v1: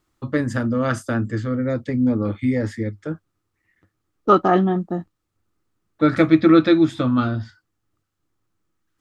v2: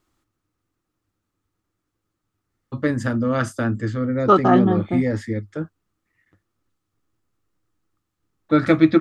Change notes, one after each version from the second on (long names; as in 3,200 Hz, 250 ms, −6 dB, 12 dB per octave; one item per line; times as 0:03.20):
first voice: entry +2.50 s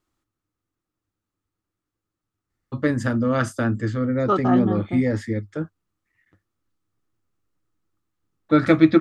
second voice −6.5 dB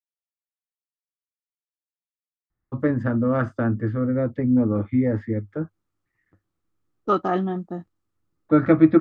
first voice: add low-pass filter 1,400 Hz 12 dB per octave
second voice: entry +2.80 s